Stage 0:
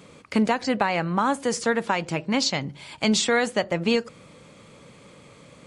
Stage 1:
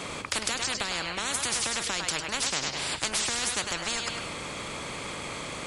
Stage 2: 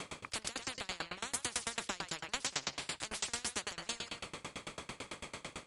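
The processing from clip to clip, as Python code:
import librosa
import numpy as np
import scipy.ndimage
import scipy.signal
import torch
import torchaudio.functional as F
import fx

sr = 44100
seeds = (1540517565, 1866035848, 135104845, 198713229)

y1 = fx.echo_thinned(x, sr, ms=102, feedback_pct=35, hz=420.0, wet_db=-13.0)
y1 = fx.spectral_comp(y1, sr, ratio=10.0)
y2 = fx.tremolo_decay(y1, sr, direction='decaying', hz=9.0, depth_db=28)
y2 = y2 * 10.0 ** (-2.5 / 20.0)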